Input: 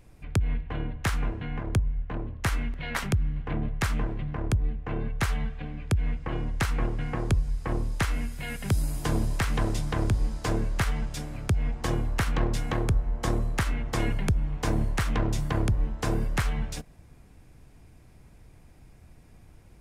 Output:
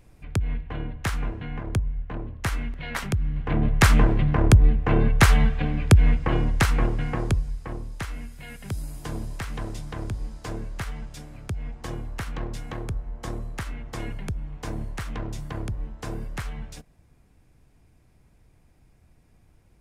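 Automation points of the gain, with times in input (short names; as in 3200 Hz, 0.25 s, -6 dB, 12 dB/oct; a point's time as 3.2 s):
3.15 s 0 dB
3.85 s +11 dB
5.88 s +11 dB
7.24 s +2.5 dB
7.79 s -6 dB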